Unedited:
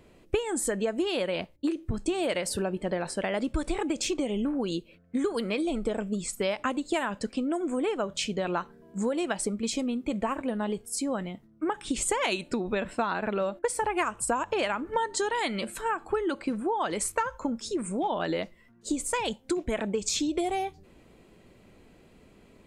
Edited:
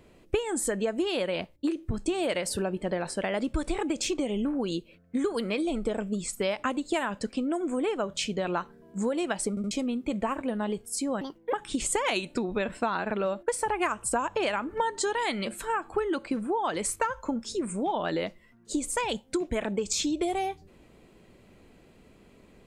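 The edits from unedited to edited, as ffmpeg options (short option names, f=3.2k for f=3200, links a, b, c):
-filter_complex "[0:a]asplit=6[a][b][c][d][e][f];[a]atrim=end=9.572[g];[b]atrim=start=9.498:end=9.572[h];[c]atrim=start=9.498:end=9.572[i];[d]atrim=start=9.708:end=11.214[j];[e]atrim=start=11.21:end=11.69,asetpts=PTS-STARTPTS,asetrate=66591,aresample=44100[k];[f]atrim=start=11.686[l];[g][h]acrossfade=d=0.004:c1=hsin:c2=hsin[m];[m][i]acrossfade=d=0.004:c1=hsin:c2=hsin[n];[n][j]acrossfade=d=0.004:c1=hsin:c2=hsin[o];[o][k]acrossfade=d=0.004:c1=hsin:c2=hsin[p];[p][l]acrossfade=d=0.004:c1=hsin:c2=hsin"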